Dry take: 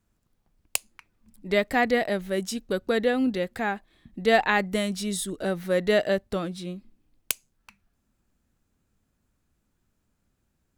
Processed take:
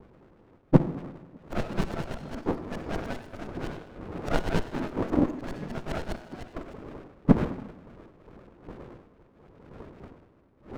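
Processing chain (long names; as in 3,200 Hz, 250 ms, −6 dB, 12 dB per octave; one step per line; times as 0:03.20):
frequency axis turned over on the octave scale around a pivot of 1,600 Hz
wind on the microphone 550 Hz −45 dBFS
auto-filter low-pass saw up 9.8 Hz 350–2,900 Hz
on a send at −11 dB: convolution reverb RT60 1.1 s, pre-delay 42 ms
on the sum: windowed peak hold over 33 samples
level +1 dB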